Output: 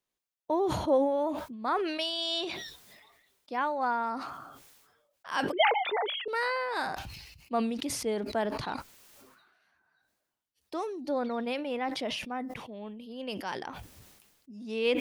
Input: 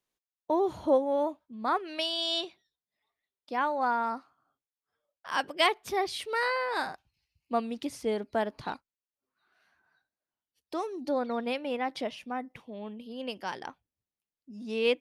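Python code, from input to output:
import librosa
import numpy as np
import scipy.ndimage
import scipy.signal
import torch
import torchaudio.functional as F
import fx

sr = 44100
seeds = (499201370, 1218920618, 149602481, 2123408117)

y = fx.sine_speech(x, sr, at=(5.52, 6.28))
y = fx.sustainer(y, sr, db_per_s=42.0)
y = y * 10.0 ** (-1.5 / 20.0)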